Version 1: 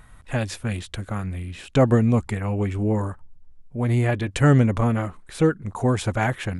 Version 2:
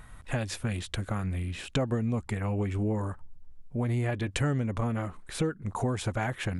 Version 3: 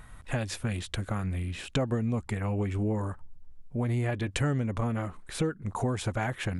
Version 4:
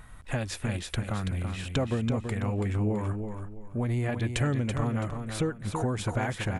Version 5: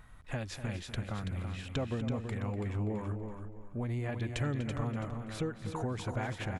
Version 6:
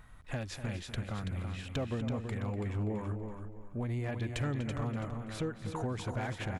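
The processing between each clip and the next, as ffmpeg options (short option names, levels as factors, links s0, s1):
-af "acompressor=threshold=0.0447:ratio=4"
-af anull
-af "aecho=1:1:331|662|993:0.447|0.125|0.035"
-filter_complex "[0:a]equalizer=f=9300:w=2:g=-7,asplit=2[s0][s1];[s1]adelay=244.9,volume=0.282,highshelf=f=4000:g=-5.51[s2];[s0][s2]amix=inputs=2:normalize=0,volume=0.473"
-af "asoftclip=type=hard:threshold=0.0422"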